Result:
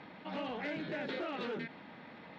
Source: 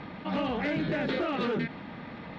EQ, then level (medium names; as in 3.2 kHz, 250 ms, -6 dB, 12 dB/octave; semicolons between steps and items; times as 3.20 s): high-pass 310 Hz 6 dB/octave; band-stop 1.2 kHz, Q 20; -7.0 dB